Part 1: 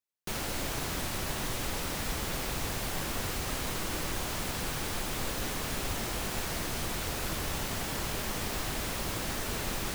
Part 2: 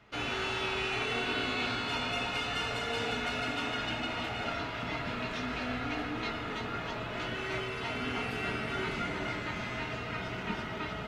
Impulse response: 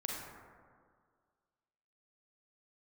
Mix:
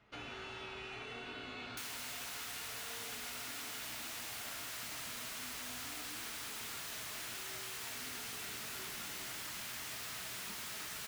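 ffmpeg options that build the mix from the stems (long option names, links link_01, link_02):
-filter_complex "[0:a]highpass=1400,adelay=1500,volume=3dB[link_01];[1:a]volume=-8dB[link_02];[link_01][link_02]amix=inputs=2:normalize=0,acompressor=threshold=-45dB:ratio=3"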